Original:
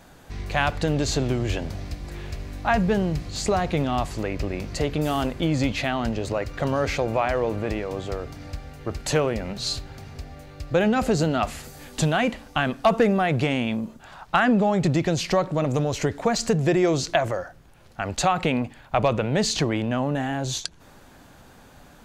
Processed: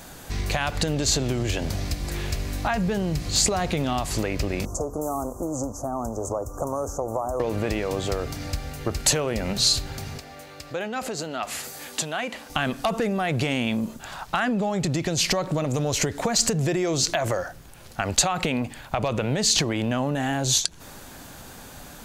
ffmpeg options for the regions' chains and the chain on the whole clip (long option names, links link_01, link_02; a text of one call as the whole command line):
ffmpeg -i in.wav -filter_complex "[0:a]asettb=1/sr,asplit=3[link_01][link_02][link_03];[link_01]atrim=end=4.654[link_04];[link_02]atrim=start=4.65:end=7.4,asetpts=PTS-STARTPTS,afade=type=in:duration=0.004:curve=qsin,afade=type=out:start_time=2.746:duration=0.004:curve=qsin,equalizer=frequency=160:width_type=o:width=0.5:gain=-9,acrossover=split=530|6200[link_05][link_06][link_07];[link_05]acompressor=threshold=-37dB:ratio=4[link_08];[link_06]acompressor=threshold=-32dB:ratio=4[link_09];[link_07]acompressor=threshold=-57dB:ratio=4[link_10];[link_08][link_09][link_10]amix=inputs=3:normalize=0,asuperstop=centerf=2800:order=12:qfactor=0.56[link_11];[link_03]atrim=start=7.396[link_12];[link_04][link_11]acrossfade=duration=0.004:curve1=hsin:curve2=qsin[link_13];[link_13][link_12]acrossfade=duration=0.004:curve1=qsin:curve2=hsin,asettb=1/sr,asplit=3[link_14][link_15][link_16];[link_14]atrim=end=10.184[link_17];[link_15]atrim=start=10.18:end=12.5,asetpts=PTS-STARTPTS,afade=type=in:duration=0.004:curve=qsin,afade=type=out:start_time=2.316:duration=0.004:curve=qsin,highshelf=frequency=3800:gain=-6.5,acompressor=threshold=-31dB:ratio=3:attack=3.2:release=140:knee=1:detection=peak,highpass=frequency=530:poles=1[link_18];[link_16]atrim=start=12.496[link_19];[link_17][link_18]acrossfade=duration=0.004:curve1=hsin:curve2=qsin[link_20];[link_20][link_19]acrossfade=duration=0.004:curve1=qsin:curve2=hsin,alimiter=limit=-15.5dB:level=0:latency=1:release=132,acompressor=threshold=-27dB:ratio=6,highshelf=frequency=4600:gain=11,volume=5.5dB" out.wav